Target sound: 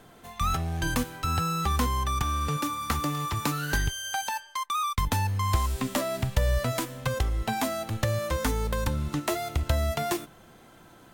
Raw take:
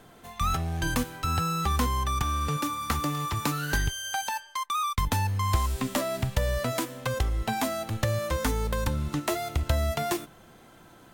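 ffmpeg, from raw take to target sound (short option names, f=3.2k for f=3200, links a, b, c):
-filter_complex "[0:a]asettb=1/sr,asplit=3[a][b][c];[a]atrim=end=6.244[d];[b]atrim=start=6.24:end=7.08,asetpts=PTS-STARTPTS,afade=t=in:d=0.004:c=qsin,afade=t=out:st=0.836:d=0.004:c=qsin,asubboost=boost=9.5:cutoff=150[e];[c]atrim=start=7.076[f];[d][e]acrossfade=d=0.004:c1=hsin:c2=qsin[g];[g][f]acrossfade=d=0.004:c1=qsin:c2=hsin"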